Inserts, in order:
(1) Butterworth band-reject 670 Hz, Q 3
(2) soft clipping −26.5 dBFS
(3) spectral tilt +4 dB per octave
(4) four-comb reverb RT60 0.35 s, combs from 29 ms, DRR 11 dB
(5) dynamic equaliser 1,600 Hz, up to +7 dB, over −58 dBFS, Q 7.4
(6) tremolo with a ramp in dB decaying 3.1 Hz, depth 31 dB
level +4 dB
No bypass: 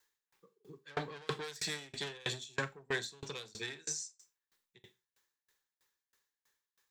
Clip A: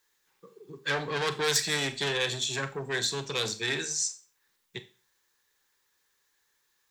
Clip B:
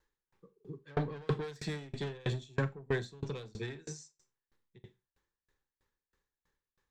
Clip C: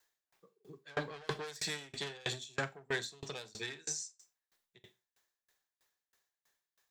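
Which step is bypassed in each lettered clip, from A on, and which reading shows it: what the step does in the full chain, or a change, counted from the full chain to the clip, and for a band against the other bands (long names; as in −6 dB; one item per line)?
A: 6, change in momentary loudness spread +12 LU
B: 3, 8 kHz band −13.5 dB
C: 1, change in crest factor −2.0 dB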